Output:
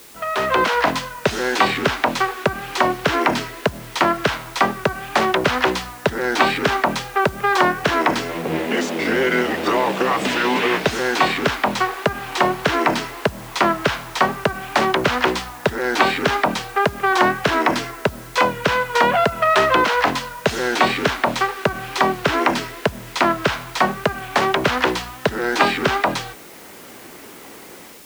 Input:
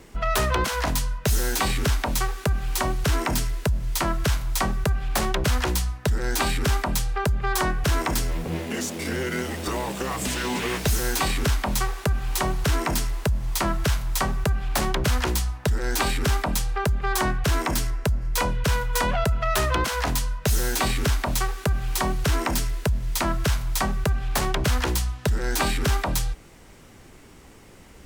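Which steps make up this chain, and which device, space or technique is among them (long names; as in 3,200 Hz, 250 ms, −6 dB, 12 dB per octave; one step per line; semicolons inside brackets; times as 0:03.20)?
dictaphone (band-pass filter 270–3,200 Hz; automatic gain control gain up to 11.5 dB; tape wow and flutter; white noise bed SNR 24 dB)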